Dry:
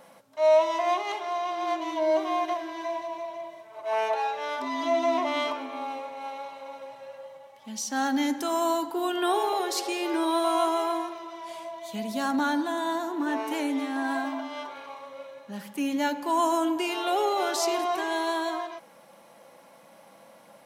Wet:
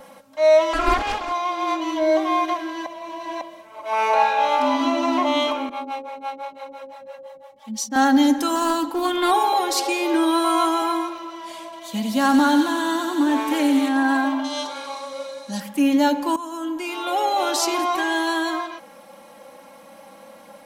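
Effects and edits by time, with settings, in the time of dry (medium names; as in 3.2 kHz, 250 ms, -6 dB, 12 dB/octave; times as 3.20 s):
0.73–1.32 s: loudspeaker Doppler distortion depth 0.47 ms
2.86–3.41 s: reverse
3.94–4.70 s: reverb throw, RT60 2.6 s, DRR -1 dB
5.69–7.96 s: harmonic tremolo 5.9 Hz, depth 100%, crossover 460 Hz
8.55–9.31 s: loudspeaker Doppler distortion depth 0.11 ms
9.86–10.82 s: high-pass 130 Hz
11.63–13.89 s: feedback echo behind a high-pass 93 ms, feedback 81%, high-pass 2.1 kHz, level -5 dB
14.44–15.60 s: high-order bell 6.3 kHz +14 dB
16.36–17.60 s: fade in, from -18 dB
whole clip: bass shelf 92 Hz +9 dB; comb 3.7 ms, depth 63%; trim +5.5 dB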